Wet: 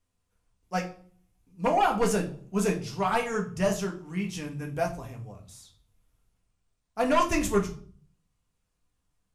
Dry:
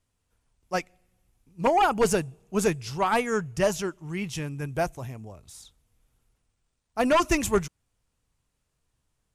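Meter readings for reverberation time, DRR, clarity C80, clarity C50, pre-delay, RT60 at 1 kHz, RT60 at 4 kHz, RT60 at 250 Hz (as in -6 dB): 0.50 s, 0.0 dB, 16.5 dB, 11.5 dB, 4 ms, 0.45 s, 0.40 s, 0.70 s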